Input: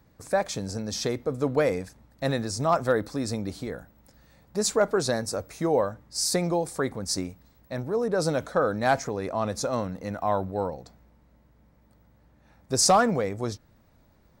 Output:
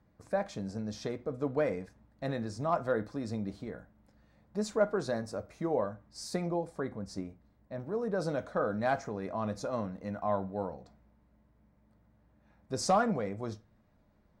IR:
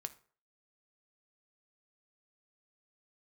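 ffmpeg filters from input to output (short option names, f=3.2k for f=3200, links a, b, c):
-filter_complex "[0:a]asetnsamples=n=441:p=0,asendcmd='6.46 lowpass f 1100;7.8 lowpass f 2500',lowpass=f=2k:p=1[a];[1:a]atrim=start_sample=2205,asetrate=66150,aresample=44100[b];[a][b]afir=irnorm=-1:irlink=0"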